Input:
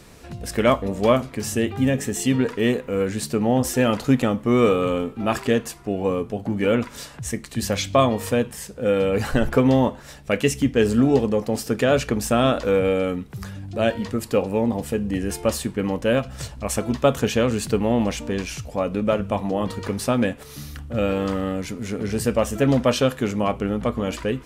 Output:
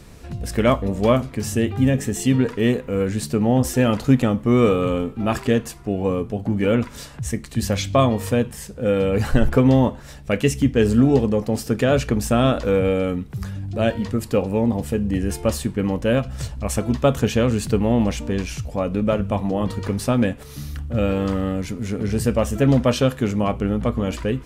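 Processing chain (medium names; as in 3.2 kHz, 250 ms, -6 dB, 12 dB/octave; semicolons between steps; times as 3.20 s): bass shelf 180 Hz +9 dB; trim -1 dB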